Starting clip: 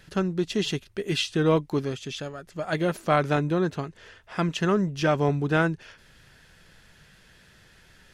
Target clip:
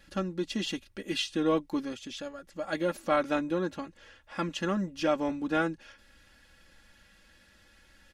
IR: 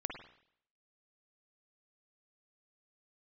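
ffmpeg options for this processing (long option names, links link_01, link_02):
-af "aecho=1:1:3.6:0.88,volume=-7dB"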